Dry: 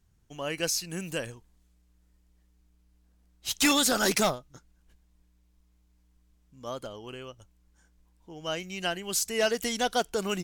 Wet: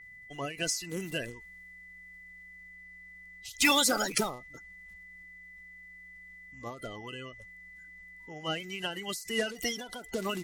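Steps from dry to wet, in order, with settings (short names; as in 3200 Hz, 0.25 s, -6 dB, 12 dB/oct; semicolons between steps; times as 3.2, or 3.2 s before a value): bin magnitudes rounded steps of 30 dB; whine 2000 Hz -48 dBFS; ending taper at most 110 dB/s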